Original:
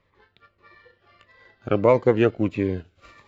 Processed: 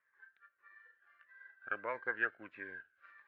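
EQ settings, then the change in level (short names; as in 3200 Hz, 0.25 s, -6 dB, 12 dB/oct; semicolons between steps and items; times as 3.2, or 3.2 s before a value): band-pass 1600 Hz, Q 18; air absorption 97 m; +8.5 dB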